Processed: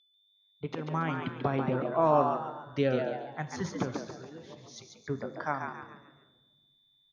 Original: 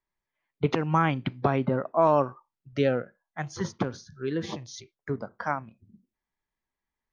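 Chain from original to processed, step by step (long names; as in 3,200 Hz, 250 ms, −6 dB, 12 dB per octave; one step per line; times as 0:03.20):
fade in at the beginning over 1.83 s
0:04.11–0:04.76: downward compressor 5 to 1, threshold −44 dBFS, peak gain reduction 17 dB
steady tone 3,500 Hz −61 dBFS
echo with shifted repeats 140 ms, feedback 38%, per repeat +100 Hz, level −5.5 dB
rectangular room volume 970 cubic metres, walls mixed, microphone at 0.4 metres
level −4 dB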